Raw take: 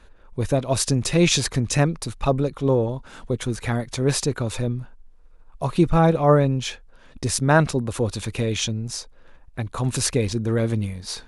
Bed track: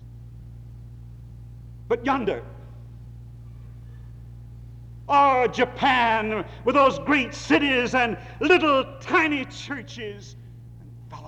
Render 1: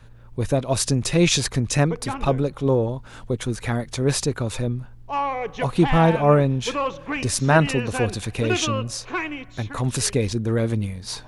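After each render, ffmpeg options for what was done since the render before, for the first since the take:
-filter_complex "[1:a]volume=-7.5dB[a];[0:a][a]amix=inputs=2:normalize=0"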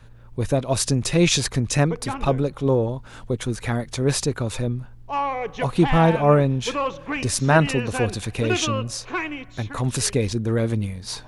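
-af anull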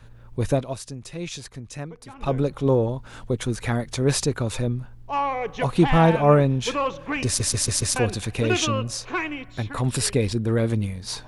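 -filter_complex "[0:a]asettb=1/sr,asplit=3[a][b][c];[a]atrim=end=9.334[d];[b]atrim=start=9.33:end=10.7,asetpts=PTS-STARTPTS,afade=t=in:d=0.004:c=qsin,afade=t=out:st=1.366:d=0.004:c=qsin,bandreject=f=6.3k:w=6[e];[c]atrim=start=10.696[f];[d][e]acrossfade=d=0.004:c1=hsin:c2=qsin[g];[g][f]acrossfade=d=0.004:c1=qsin:c2=hsin,asplit=8[h][i][j][k][l][m][n][o];[h]atrim=end=0.78,asetpts=PTS-STARTPTS,afade=t=out:st=0.53:d=0.25:silence=0.177828[p];[i]atrim=start=0.78:end=2.15,asetpts=PTS-STARTPTS,volume=-15dB[q];[j]atrim=start=2.15:end=7.402,asetpts=PTS-STARTPTS,afade=t=in:d=0.25:silence=0.177828[r];[k]atrim=start=7.258:end=7.402[s];[l]atrim=start=7.258:end=7.402[t];[m]atrim=start=7.258:end=7.402[u];[n]atrim=start=7.258:end=7.402[v];[o]atrim=start=7.958[w];[p][q][r]concat=n=3:v=0:a=1[x];[x][s]acrossfade=d=0.004:c1=hsin:c2=hsin[y];[y][t]acrossfade=d=0.004:c1=hsin:c2=hsin[z];[z][u]acrossfade=d=0.004:c1=hsin:c2=hsin[aa];[aa][v]acrossfade=d=0.004:c1=hsin:c2=hsin[ab];[ab][w]acrossfade=d=0.004:c1=hsin:c2=hsin"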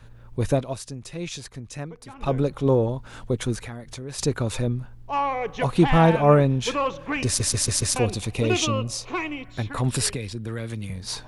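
-filter_complex "[0:a]asplit=3[a][b][c];[a]afade=t=out:st=3.59:d=0.02[d];[b]acompressor=threshold=-36dB:ratio=3:attack=3.2:release=140:knee=1:detection=peak,afade=t=in:st=3.59:d=0.02,afade=t=out:st=4.18:d=0.02[e];[c]afade=t=in:st=4.18:d=0.02[f];[d][e][f]amix=inputs=3:normalize=0,asettb=1/sr,asplit=3[g][h][i];[g]atrim=end=7.964[j];[h]atrim=start=7.96:end=9.45,asetpts=PTS-STARTPTS,afade=t=in:d=0.004:c=qsin,afade=t=out:st=1.486:d=0.004:c=qsin,equalizer=f=1.6k:w=4.5:g=-11.5[k];[i]atrim=start=9.446[l];[j][k]acrossfade=d=0.004:c1=hsin:c2=qsin[m];[m][l]acrossfade=d=0.004:c1=qsin:c2=hsin,asettb=1/sr,asplit=3[n][o][p];[n]atrim=end=10.104[q];[o]atrim=start=10.1:end=10.9,asetpts=PTS-STARTPTS,afade=t=in:d=0.004:c=qsin,afade=t=out:st=0.796:d=0.004:c=qsin,acrossover=split=150|1400[r][s][t];[r]acompressor=threshold=-35dB:ratio=4[u];[s]acompressor=threshold=-34dB:ratio=4[v];[t]acompressor=threshold=-38dB:ratio=4[w];[u][v][w]amix=inputs=3:normalize=0[x];[p]atrim=start=10.896[y];[q][x]acrossfade=d=0.004:c1=hsin:c2=qsin[z];[z][y]acrossfade=d=0.004:c1=qsin:c2=hsin"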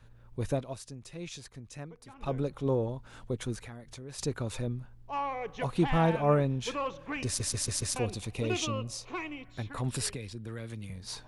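-af "volume=-9dB"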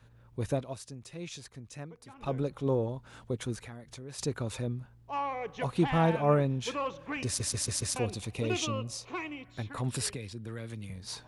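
-af "highpass=52"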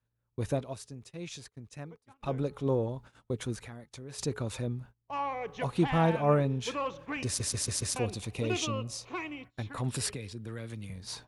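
-af "bandreject=f=425.5:t=h:w=4,bandreject=f=851:t=h:w=4,bandreject=f=1.2765k:t=h:w=4,agate=range=-24dB:threshold=-48dB:ratio=16:detection=peak"

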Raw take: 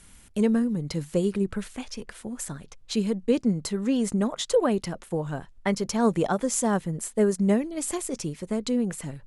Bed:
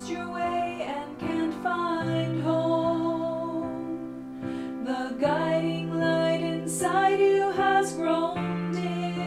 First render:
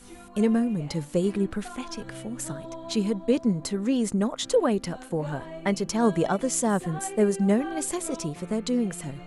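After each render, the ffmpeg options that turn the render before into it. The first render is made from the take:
-filter_complex "[1:a]volume=-14.5dB[a];[0:a][a]amix=inputs=2:normalize=0"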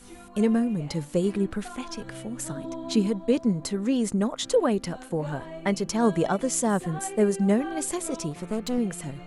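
-filter_complex "[0:a]asettb=1/sr,asplit=3[a][b][c];[a]atrim=end=2.564[d];[b]atrim=start=2.56:end=3.07,asetpts=PTS-STARTPTS,afade=t=in:d=0.004:c=qsin,afade=t=out:st=0.506:d=0.004:c=qsin,equalizer=f=280:w=4.1:g=15[e];[c]atrim=start=3.066[f];[d][e]acrossfade=d=0.004:c1=hsin:c2=qsin[g];[g][f]acrossfade=d=0.004:c1=qsin:c2=hsin,asettb=1/sr,asplit=3[h][i][j];[h]atrim=end=8.314[k];[i]atrim=start=8.31:end=8.78,asetpts=PTS-STARTPTS,afade=t=in:d=0.004:c=qsin,afade=t=out:st=0.466:d=0.004:c=qsin,aeval=exprs='clip(val(0),-1,0.0211)':c=same[l];[j]atrim=start=8.776[m];[k][l]acrossfade=d=0.004:c1=hsin:c2=qsin[n];[n][m]acrossfade=d=0.004:c1=qsin:c2=hsin"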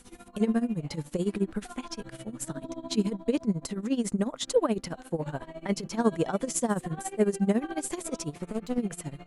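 -af "tremolo=f=14:d=0.85"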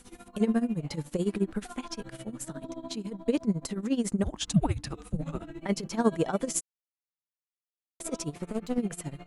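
-filter_complex "[0:a]asettb=1/sr,asplit=3[a][b][c];[a]atrim=end=2.404[d];[b]atrim=start=2.4:end=3.21,asetpts=PTS-STARTPTS,afade=t=in:d=0.004:c=qsin,afade=t=out:st=0.806:d=0.004:c=qsin,acompressor=threshold=-33dB:ratio=4:attack=3.2:release=140:knee=1:detection=peak[e];[c]atrim=start=3.206[f];[d][e]acrossfade=d=0.004:c1=hsin:c2=qsin[g];[g][f]acrossfade=d=0.004:c1=qsin:c2=hsin,asplit=3[h][i][j];[h]afade=t=out:st=4.23:d=0.02[k];[i]afreqshift=-310,afade=t=in:st=4.23:d=0.02,afade=t=out:st=5.59:d=0.02[l];[j]afade=t=in:st=5.59:d=0.02[m];[k][l][m]amix=inputs=3:normalize=0,asplit=3[n][o][p];[n]atrim=end=6.61,asetpts=PTS-STARTPTS,afade=t=out:st=6.606:d=0.004:c=hsin[q];[o]atrim=start=6.61:end=8,asetpts=PTS-STARTPTS,volume=0[r];[p]atrim=start=8,asetpts=PTS-STARTPTS,afade=t=in:d=0.004:c=hsin[s];[q][r][s]concat=n=3:v=0:a=1"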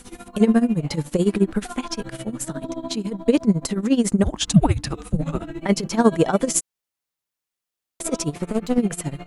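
-af "volume=9.5dB,alimiter=limit=-3dB:level=0:latency=1"

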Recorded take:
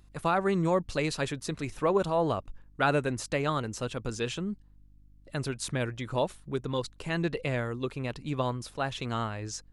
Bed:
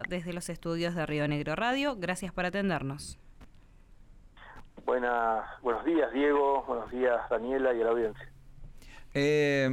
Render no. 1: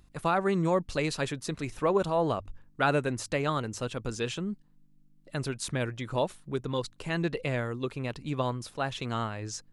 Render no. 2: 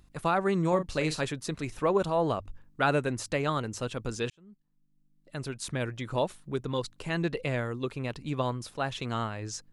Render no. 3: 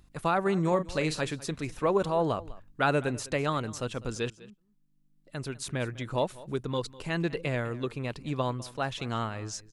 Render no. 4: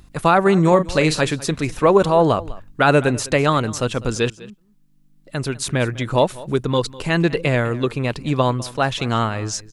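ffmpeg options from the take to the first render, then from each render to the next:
-af "bandreject=f=50:t=h:w=4,bandreject=f=100:t=h:w=4"
-filter_complex "[0:a]asettb=1/sr,asplit=3[a][b][c];[a]atrim=end=0.684[d];[b]atrim=start=0.68:end=1.24,asetpts=PTS-STARTPTS,afade=t=in:d=0.004:c=qsin,afade=t=out:st=0.556:d=0.004:c=qsin,asplit=2[e][f];[f]adelay=39,volume=-10dB[g];[e][g]amix=inputs=2:normalize=0,atrim=end_sample=24696[h];[c]atrim=start=1.236[i];[d][h]acrossfade=d=0.004:c1=hsin:c2=qsin[j];[j][i]acrossfade=d=0.004:c1=qsin:c2=hsin,asplit=2[k][l];[k]atrim=end=4.3,asetpts=PTS-STARTPTS,afade=t=out:st=4.296:d=0.004:c=hsin[m];[l]atrim=start=4.3,asetpts=PTS-STARTPTS,afade=t=in:d=1.71[n];[m][n]concat=n=2:v=0:a=1"
-af "aecho=1:1:201:0.106"
-af "volume=12dB,alimiter=limit=-3dB:level=0:latency=1"

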